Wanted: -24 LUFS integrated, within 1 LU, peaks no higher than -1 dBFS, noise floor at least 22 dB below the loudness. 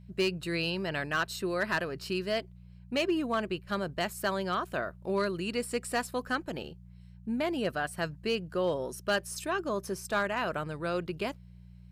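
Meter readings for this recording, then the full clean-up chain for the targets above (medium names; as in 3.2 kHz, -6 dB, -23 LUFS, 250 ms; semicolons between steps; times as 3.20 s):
clipped samples 0.4%; clipping level -21.5 dBFS; hum 60 Hz; highest harmonic 180 Hz; hum level -48 dBFS; loudness -32.5 LUFS; peak level -21.5 dBFS; loudness target -24.0 LUFS
-> clip repair -21.5 dBFS; de-hum 60 Hz, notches 3; trim +8.5 dB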